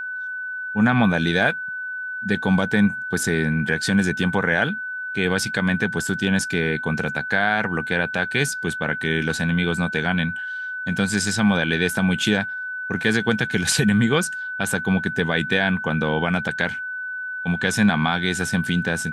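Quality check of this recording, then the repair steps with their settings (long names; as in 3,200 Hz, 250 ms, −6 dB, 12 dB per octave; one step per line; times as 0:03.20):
whistle 1,500 Hz −27 dBFS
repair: notch filter 1,500 Hz, Q 30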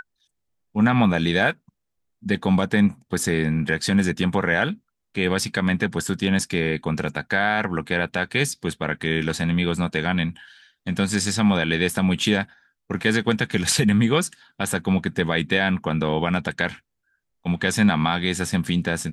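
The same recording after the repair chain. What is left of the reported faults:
none of them is left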